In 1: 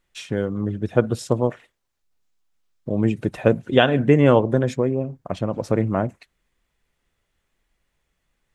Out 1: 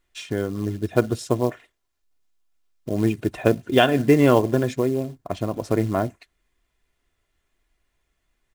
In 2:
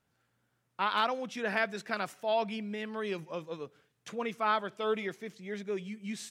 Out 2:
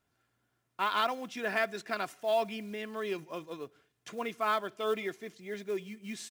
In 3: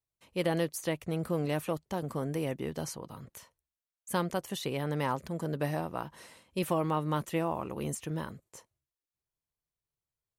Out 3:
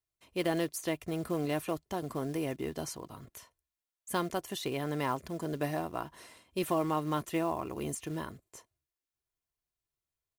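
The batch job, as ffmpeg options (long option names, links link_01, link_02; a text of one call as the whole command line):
ffmpeg -i in.wav -af "acrusher=bits=6:mode=log:mix=0:aa=0.000001,aecho=1:1:2.9:0.38,volume=-1dB" out.wav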